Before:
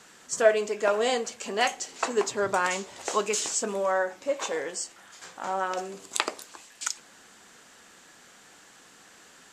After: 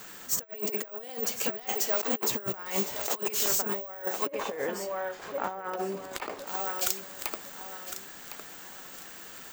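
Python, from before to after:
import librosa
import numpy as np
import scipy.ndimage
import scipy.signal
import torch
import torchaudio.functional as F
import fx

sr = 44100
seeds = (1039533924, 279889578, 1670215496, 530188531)

y = fx.self_delay(x, sr, depth_ms=0.19)
y = fx.low_shelf(y, sr, hz=61.0, db=8.0)
y = fx.echo_feedback(y, sr, ms=1058, feedback_pct=30, wet_db=-12.5)
y = (np.kron(scipy.signal.resample_poly(y, 1, 2), np.eye(2)[0]) * 2)[:len(y)]
y = fx.over_compress(y, sr, threshold_db=-30.0, ratio=-0.5)
y = fx.lowpass(y, sr, hz=1900.0, slope=6, at=(4.25, 6.46), fade=0.02)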